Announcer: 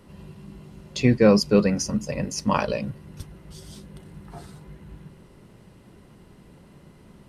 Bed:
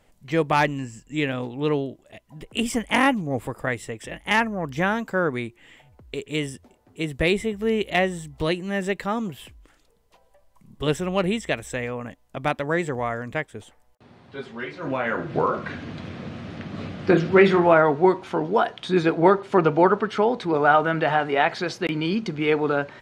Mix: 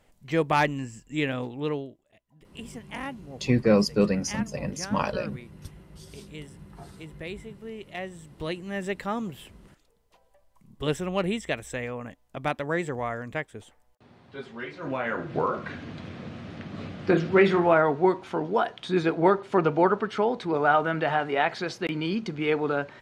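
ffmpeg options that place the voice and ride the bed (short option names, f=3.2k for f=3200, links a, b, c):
-filter_complex "[0:a]adelay=2450,volume=-4dB[a];[1:a]volume=10dB,afade=t=out:st=1.43:d=0.62:silence=0.199526,afade=t=in:st=7.9:d=1.19:silence=0.237137[b];[a][b]amix=inputs=2:normalize=0"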